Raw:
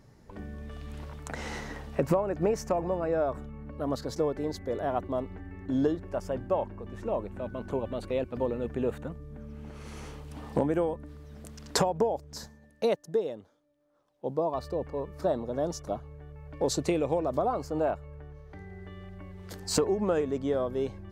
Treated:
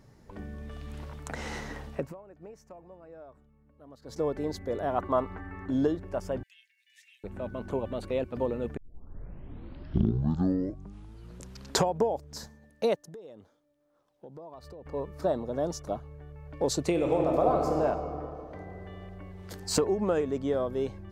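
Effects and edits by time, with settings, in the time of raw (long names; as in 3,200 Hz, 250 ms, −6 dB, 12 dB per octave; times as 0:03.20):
0:01.86–0:04.28: duck −20.5 dB, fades 0.27 s
0:04.98–0:05.69: parametric band 1,200 Hz +13.5 dB 1.3 octaves
0:06.43–0:07.24: Butterworth high-pass 1,900 Hz 72 dB per octave
0:08.77: tape start 3.15 s
0:13.04–0:14.86: downward compressor 5 to 1, threshold −44 dBFS
0:16.91–0:17.75: thrown reverb, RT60 3 s, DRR 0 dB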